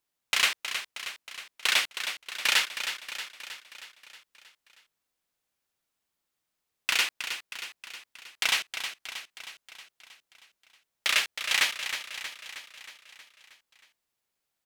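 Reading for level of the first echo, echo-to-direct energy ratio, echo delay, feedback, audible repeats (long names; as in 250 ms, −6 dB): −9.0 dB, −7.0 dB, 316 ms, 59%, 6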